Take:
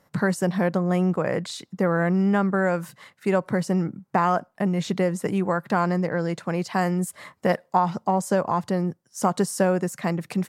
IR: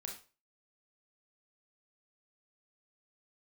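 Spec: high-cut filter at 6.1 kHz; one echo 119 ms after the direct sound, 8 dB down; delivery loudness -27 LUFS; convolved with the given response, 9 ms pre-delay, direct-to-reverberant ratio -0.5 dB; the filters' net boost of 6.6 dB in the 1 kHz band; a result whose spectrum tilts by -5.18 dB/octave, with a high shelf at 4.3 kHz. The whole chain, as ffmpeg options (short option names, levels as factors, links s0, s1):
-filter_complex "[0:a]lowpass=6100,equalizer=f=1000:t=o:g=8,highshelf=f=4300:g=7.5,aecho=1:1:119:0.398,asplit=2[s0][s1];[1:a]atrim=start_sample=2205,adelay=9[s2];[s1][s2]afir=irnorm=-1:irlink=0,volume=1.41[s3];[s0][s3]amix=inputs=2:normalize=0,volume=0.355"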